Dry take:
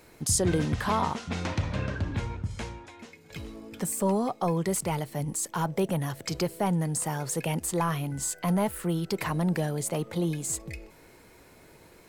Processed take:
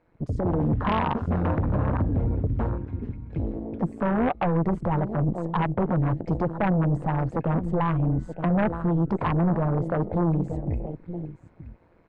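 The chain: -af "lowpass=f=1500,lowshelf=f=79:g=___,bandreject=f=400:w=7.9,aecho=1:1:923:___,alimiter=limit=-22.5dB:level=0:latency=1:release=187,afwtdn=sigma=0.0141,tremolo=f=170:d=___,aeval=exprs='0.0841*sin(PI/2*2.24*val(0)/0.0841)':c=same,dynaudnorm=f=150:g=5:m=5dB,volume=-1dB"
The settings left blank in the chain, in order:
4, 0.168, 0.75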